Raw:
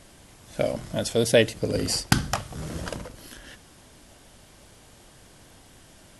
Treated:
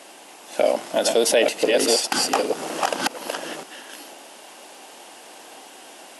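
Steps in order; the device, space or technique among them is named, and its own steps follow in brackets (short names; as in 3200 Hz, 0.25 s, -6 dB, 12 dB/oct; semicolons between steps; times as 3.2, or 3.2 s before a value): reverse delay 0.519 s, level -4 dB; laptop speaker (HPF 290 Hz 24 dB/oct; bell 810 Hz +7.5 dB 0.54 oct; bell 2700 Hz +6 dB 0.25 oct; limiter -15.5 dBFS, peak gain reduction 13 dB); gain +7.5 dB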